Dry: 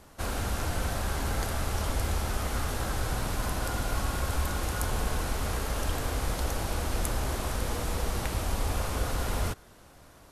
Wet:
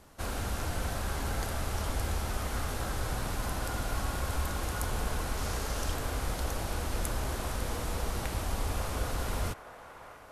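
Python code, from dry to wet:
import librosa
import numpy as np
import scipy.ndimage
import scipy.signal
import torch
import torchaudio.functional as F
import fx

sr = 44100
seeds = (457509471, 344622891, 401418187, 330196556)

y = fx.peak_eq(x, sr, hz=5700.0, db=4.5, octaves=0.98, at=(5.37, 5.94))
y = fx.echo_wet_bandpass(y, sr, ms=635, feedback_pct=69, hz=1100.0, wet_db=-11)
y = y * librosa.db_to_amplitude(-3.0)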